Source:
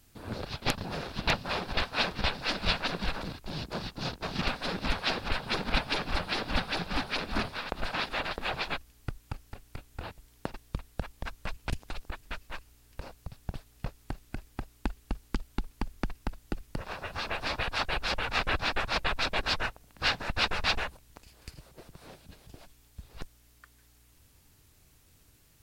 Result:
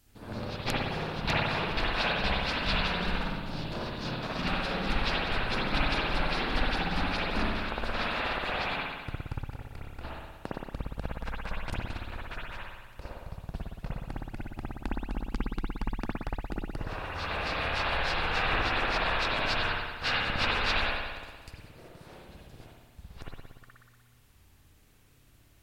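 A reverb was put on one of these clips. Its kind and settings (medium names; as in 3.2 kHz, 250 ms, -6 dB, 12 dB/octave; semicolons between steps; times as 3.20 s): spring tank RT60 1.4 s, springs 58 ms, chirp 40 ms, DRR -5 dB; trim -4 dB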